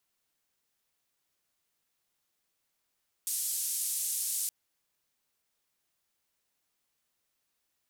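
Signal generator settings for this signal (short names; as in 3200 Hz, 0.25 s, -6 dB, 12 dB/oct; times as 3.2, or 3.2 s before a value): noise band 8000–11000 Hz, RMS -33 dBFS 1.22 s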